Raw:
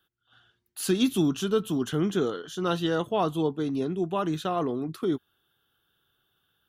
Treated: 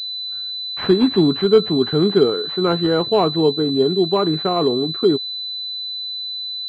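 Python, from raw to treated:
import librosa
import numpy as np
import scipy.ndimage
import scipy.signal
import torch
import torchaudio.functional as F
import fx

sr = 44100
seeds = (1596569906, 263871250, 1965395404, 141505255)

y = fx.peak_eq(x, sr, hz=410.0, db=8.5, octaves=0.26)
y = fx.pwm(y, sr, carrier_hz=4000.0)
y = y * 10.0 ** (7.5 / 20.0)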